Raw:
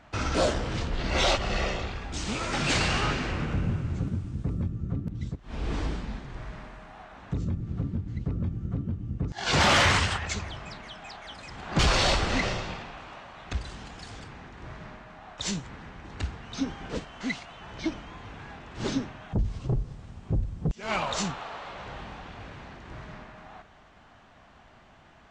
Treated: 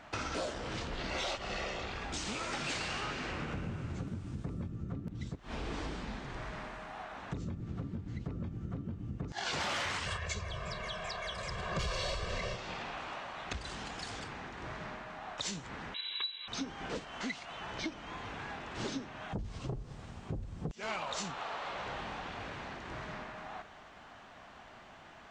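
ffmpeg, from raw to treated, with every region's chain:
-filter_complex "[0:a]asettb=1/sr,asplit=3[a][b][c];[a]atrim=end=10.064[d];[b]atrim=start=10.06:end=12.56,asetpts=PTS-STARTPTS,afade=t=in:d=0.004:c=qsin,afade=t=out:st=2.496:d=0.004:c=qsin,lowshelf=f=340:g=7.5,aecho=1:1:1.8:0.97,atrim=end_sample=110250[e];[c]atrim=start=12.556[f];[d][e]acrossfade=d=0.004:c1=hsin:c2=qsin[g];[g][f]acrossfade=d=0.004:c1=qsin:c2=hsin,asettb=1/sr,asplit=3[h][i][j];[h]atrim=end=15.944[k];[i]atrim=start=15.94:end=16.48,asetpts=PTS-STARTPTS,afade=t=in:d=0.004:c=qsin,afade=t=out:st=0.536:d=0.004:c=qsin,aecho=1:1:1.7:0.65,atrim=end_sample=23814,lowpass=f=3.4k:t=q:w=0.5098,lowpass=f=3.4k:t=q:w=0.6013,lowpass=f=3.4k:t=q:w=0.9,lowpass=f=3.4k:t=q:w=2.563,afreqshift=-4000[l];[j]atrim=start=16.476[m];[k][l]acrossfade=d=0.004:c1=hsin:c2=qsin[n];[n][m]acrossfade=d=0.004:c1=qsin:c2=hsin,lowshelf=f=190:g=-9.5,acompressor=threshold=-39dB:ratio=5,volume=3dB"

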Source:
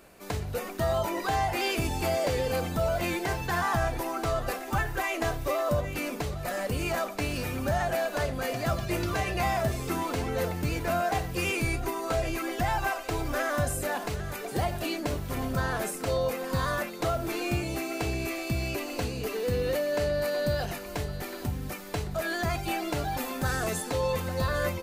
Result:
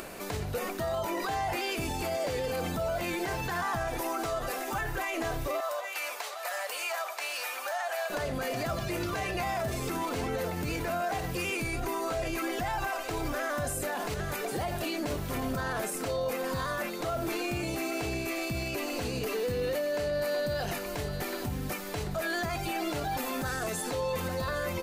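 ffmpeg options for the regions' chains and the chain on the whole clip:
-filter_complex "[0:a]asettb=1/sr,asplit=3[a][b][c];[a]atrim=end=3.884[d];[b]atrim=start=3.88:end=4.81,asetpts=PTS-STARTPTS,afade=t=in:d=0.004:c=qsin,afade=t=out:st=0.926:d=0.004:c=qsin,bass=f=250:g=-4,treble=f=4k:g=3,bandreject=f=4.4k:w=25[e];[c]atrim=start=4.806[f];[d][e]acrossfade=d=0.004:c1=hsin:c2=qsin[g];[g][f]acrossfade=d=0.004:c1=qsin:c2=hsin,asettb=1/sr,asplit=3[h][i][j];[h]atrim=end=5.604[k];[i]atrim=start=5.6:end=8.1,asetpts=PTS-STARTPTS,afade=t=in:d=0.004:c=qsin,afade=t=out:st=2.496:d=0.004:c=qsin,highpass=f=690:w=0.5412,highpass=f=690:w=1.3066,acompressor=threshold=-35dB:ratio=2:attack=3.2:release=140:knee=1:detection=peak[l];[j]atrim=start=8.096[m];[k][l]acrossfade=d=0.004:c1=hsin:c2=qsin[n];[n][m]acrossfade=d=0.004:c1=qsin:c2=hsin,equalizer=f=65:w=0.67:g=-6,alimiter=level_in=3.5dB:limit=-24dB:level=0:latency=1:release=43,volume=-3.5dB,acompressor=mode=upward:threshold=-37dB:ratio=2.5,volume=3.5dB"

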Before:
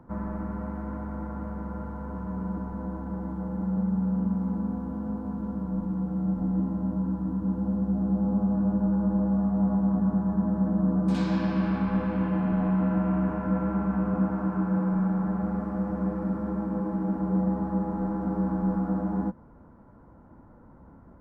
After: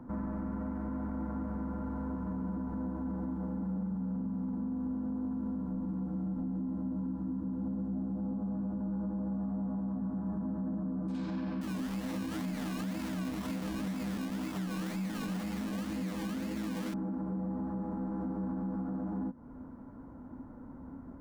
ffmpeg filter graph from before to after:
-filter_complex "[0:a]asettb=1/sr,asplit=3[a][b][c];[a]atrim=end=11.614[d];[b]atrim=start=11.61:end=16.94,asetpts=PTS-STARTPTS,afade=t=in:d=0.004:c=qsin,afade=t=out:st=5.326:d=0.004:c=qsin,acrusher=samples=26:mix=1:aa=0.000001:lfo=1:lforange=15.6:lforate=2,flanger=delay=18.5:depth=6.6:speed=1.4[e];[c]atrim=start=16.936[f];[d][e]acrossfade=d=0.004:c1=hsin:c2=qsin[g];[g][f]acrossfade=d=0.004:c1=qsin:c2=hsin,equalizer=f=260:t=o:w=0.3:g=13,acompressor=threshold=-32dB:ratio=4,alimiter=level_in=5.5dB:limit=-24dB:level=0:latency=1:release=11,volume=-5.5dB"

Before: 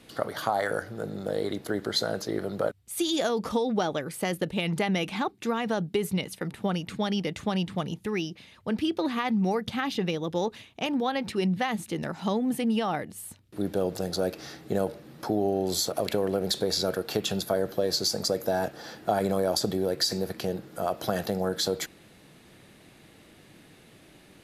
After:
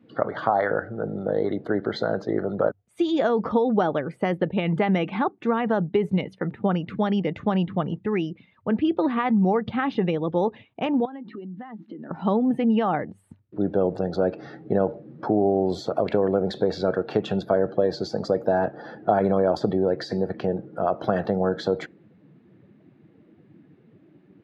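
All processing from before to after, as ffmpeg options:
-filter_complex "[0:a]asettb=1/sr,asplit=3[a][b][c];[a]atrim=end=11.054[d];[b]atrim=start=11.05:end=12.11,asetpts=PTS-STARTPTS,afade=t=in:d=0.004:c=qsin,afade=t=out:st=1.056:d=0.004:c=qsin,highpass=f=180:w=0.5412,highpass=f=180:w=1.3066,equalizer=f=280:t=q:w=4:g=7,equalizer=f=540:t=q:w=4:g=-5,equalizer=f=2.4k:t=q:w=4:g=-5,lowpass=f=4.6k:w=0.5412,lowpass=f=4.6k:w=1.3066,acompressor=threshold=-39dB:ratio=10:attack=3.2:release=140:knee=1:detection=peak[e];[c]atrim=start=12.106[f];[d][e]acrossfade=d=0.004:c1=hsin:c2=qsin[g];[g][f]acrossfade=d=0.004:c1=qsin:c2=hsin,highpass=89,afftdn=nr=15:nf=-46,lowpass=1.8k,volume=5.5dB"

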